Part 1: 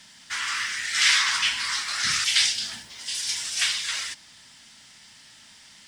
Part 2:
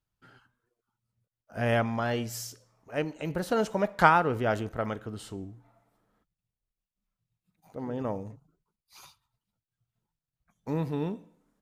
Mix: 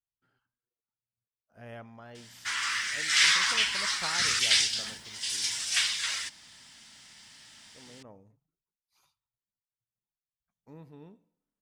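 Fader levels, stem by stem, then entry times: -2.5, -19.0 dB; 2.15, 0.00 s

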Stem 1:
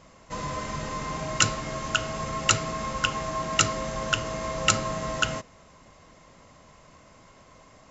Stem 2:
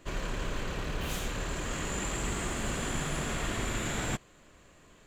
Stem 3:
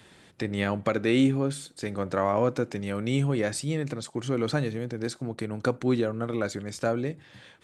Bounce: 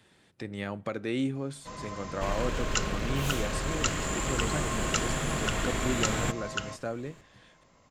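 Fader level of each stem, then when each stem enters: -8.5, +2.0, -8.0 dB; 1.35, 2.15, 0.00 s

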